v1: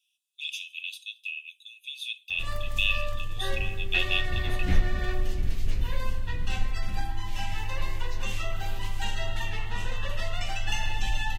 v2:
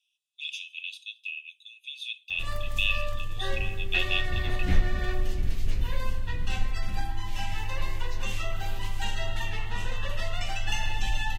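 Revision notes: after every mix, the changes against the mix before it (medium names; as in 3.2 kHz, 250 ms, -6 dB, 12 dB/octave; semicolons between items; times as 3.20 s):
speech: add distance through air 51 m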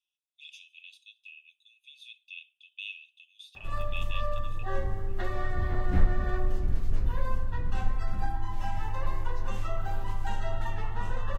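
background: entry +1.25 s; master: add resonant high shelf 1.8 kHz -10.5 dB, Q 1.5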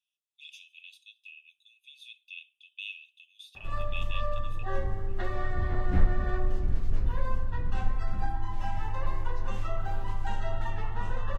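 speech: remove distance through air 51 m; master: add treble shelf 8.3 kHz -9 dB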